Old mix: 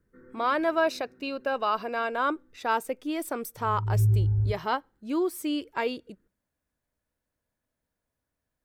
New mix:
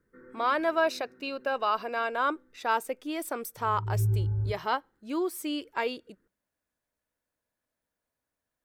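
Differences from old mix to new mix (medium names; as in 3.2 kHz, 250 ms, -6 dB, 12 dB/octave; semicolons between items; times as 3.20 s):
background +4.0 dB; master: add bass shelf 230 Hz -10 dB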